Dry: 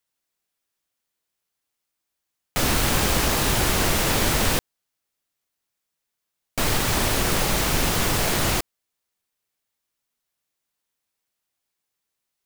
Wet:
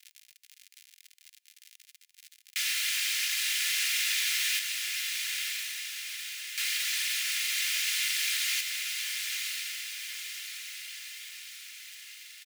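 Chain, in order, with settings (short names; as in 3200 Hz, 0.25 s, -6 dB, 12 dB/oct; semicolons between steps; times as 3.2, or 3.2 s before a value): tilt -2.5 dB/oct; on a send: diffused feedback echo 1.021 s, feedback 46%, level -4.5 dB; on the sum: crackle 92/s -39 dBFS; steep high-pass 2000 Hz 36 dB/oct; comb 2.9 ms, depth 40%; in parallel at +1 dB: compressor, threshold -48 dBFS, peak gain reduction 19.5 dB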